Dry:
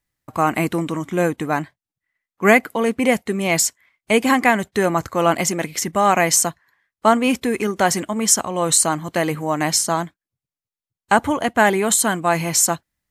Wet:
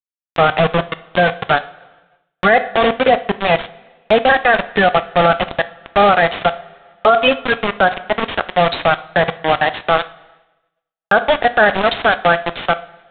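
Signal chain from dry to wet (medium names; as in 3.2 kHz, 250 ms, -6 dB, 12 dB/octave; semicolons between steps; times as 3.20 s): coarse spectral quantiser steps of 30 dB; reverb removal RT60 0.65 s; level-controlled noise filter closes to 1.2 kHz, open at -15 dBFS; static phaser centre 1.5 kHz, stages 8; 6.40–7.54 s: comb 7.2 ms, depth 92%; bit crusher 4-bit; resampled via 8 kHz; dynamic bell 710 Hz, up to +5 dB, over -36 dBFS, Q 5.9; two-slope reverb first 0.47 s, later 2.6 s, from -19 dB, DRR 12 dB; expander -52 dBFS; loudness maximiser +10.5 dB; trim -1 dB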